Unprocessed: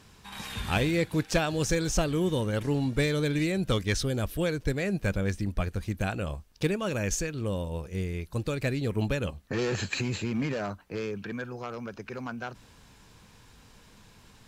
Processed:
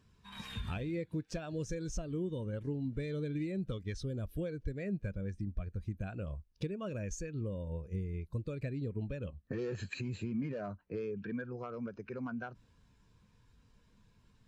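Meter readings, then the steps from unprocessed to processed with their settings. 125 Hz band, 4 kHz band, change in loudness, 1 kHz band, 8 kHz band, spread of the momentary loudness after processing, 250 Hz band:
−8.0 dB, −16.0 dB, −9.5 dB, −14.0 dB, −15.5 dB, 5 LU, −8.5 dB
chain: notch filter 810 Hz, Q 12
downward compressor 8 to 1, threshold −34 dBFS, peak gain reduction 14 dB
every bin expanded away from the loudest bin 1.5 to 1
level −4.5 dB

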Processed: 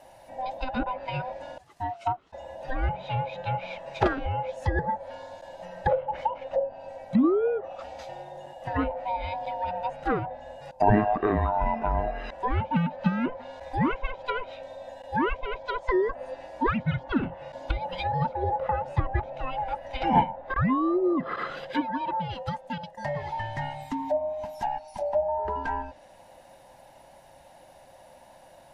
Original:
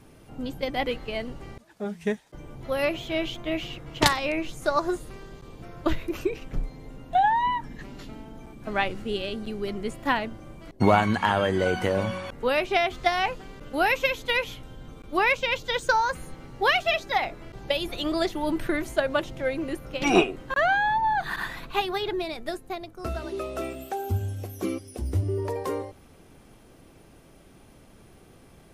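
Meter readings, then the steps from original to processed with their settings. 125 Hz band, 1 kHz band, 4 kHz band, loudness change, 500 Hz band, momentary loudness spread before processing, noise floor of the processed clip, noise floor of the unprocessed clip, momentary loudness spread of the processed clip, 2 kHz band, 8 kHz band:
+2.0 dB, −1.0 dB, −12.5 dB, −2.0 dB, −2.0 dB, 19 LU, −53 dBFS, −53 dBFS, 15 LU, −8.5 dB, below −15 dB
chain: neighbouring bands swapped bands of 500 Hz
treble cut that deepens with the level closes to 1,100 Hz, closed at −23.5 dBFS

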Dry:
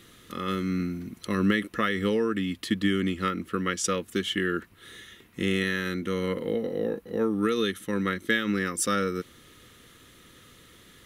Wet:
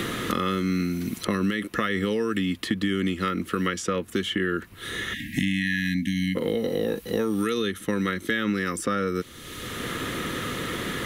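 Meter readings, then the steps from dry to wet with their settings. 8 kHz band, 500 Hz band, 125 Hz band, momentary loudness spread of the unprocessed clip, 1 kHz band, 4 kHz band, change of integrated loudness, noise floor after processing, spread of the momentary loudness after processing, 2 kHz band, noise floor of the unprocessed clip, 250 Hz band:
−2.0 dB, +1.0 dB, +3.0 dB, 9 LU, +2.0 dB, +2.5 dB, +1.0 dB, −44 dBFS, 5 LU, +2.0 dB, −55 dBFS, +2.0 dB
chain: brickwall limiter −18.5 dBFS, peak gain reduction 7 dB
time-frequency box erased 0:05.14–0:06.36, 310–1,600 Hz
multiband upward and downward compressor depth 100%
level +3 dB

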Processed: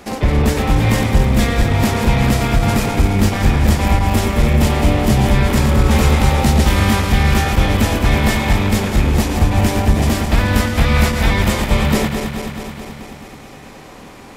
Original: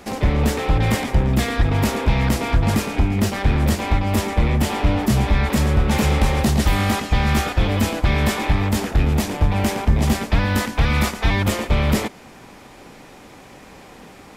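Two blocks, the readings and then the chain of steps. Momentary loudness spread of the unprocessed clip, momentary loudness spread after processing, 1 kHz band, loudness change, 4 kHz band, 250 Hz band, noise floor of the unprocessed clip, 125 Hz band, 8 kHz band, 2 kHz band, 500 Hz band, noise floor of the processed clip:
2 LU, 3 LU, +4.0 dB, +4.5 dB, +4.5 dB, +4.5 dB, −44 dBFS, +4.5 dB, +4.5 dB, +4.5 dB, +4.5 dB, −37 dBFS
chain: feedback delay that plays each chunk backwards 108 ms, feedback 82%, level −7 dB
level +2.5 dB

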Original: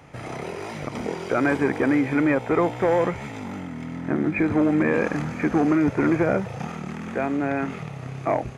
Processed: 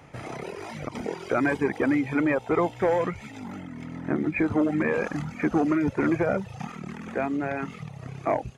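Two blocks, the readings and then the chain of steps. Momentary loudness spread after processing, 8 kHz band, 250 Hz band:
14 LU, can't be measured, −3.5 dB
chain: reverb reduction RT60 1 s
level −1.5 dB

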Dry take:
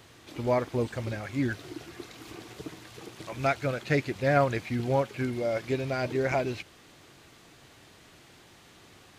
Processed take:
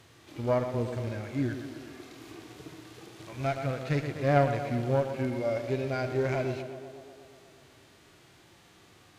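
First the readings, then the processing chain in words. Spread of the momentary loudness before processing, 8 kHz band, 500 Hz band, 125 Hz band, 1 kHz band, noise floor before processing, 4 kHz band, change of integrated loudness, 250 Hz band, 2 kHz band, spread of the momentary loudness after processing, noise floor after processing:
18 LU, can't be measured, −1.0 dB, +1.0 dB, −2.0 dB, −55 dBFS, −3.5 dB, −1.0 dB, −1.0 dB, −4.5 dB, 20 LU, −58 dBFS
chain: harmonic generator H 2 −8 dB, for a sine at −10.5 dBFS
tape delay 122 ms, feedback 78%, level −9 dB, low-pass 2,000 Hz
harmonic and percussive parts rebalanced percussive −11 dB

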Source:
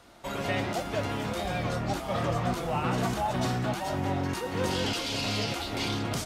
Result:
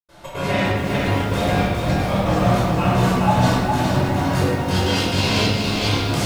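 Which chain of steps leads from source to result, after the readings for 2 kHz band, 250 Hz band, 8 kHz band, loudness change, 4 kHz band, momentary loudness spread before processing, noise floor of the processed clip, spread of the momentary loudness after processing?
+10.0 dB, +11.5 dB, +7.5 dB, +11.0 dB, +9.0 dB, 3 LU, −33 dBFS, 3 LU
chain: gate pattern ".xx.xxxx..x" 173 BPM −60 dB
rectangular room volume 860 cubic metres, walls mixed, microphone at 5.2 metres
feedback echo at a low word length 410 ms, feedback 35%, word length 7 bits, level −4 dB

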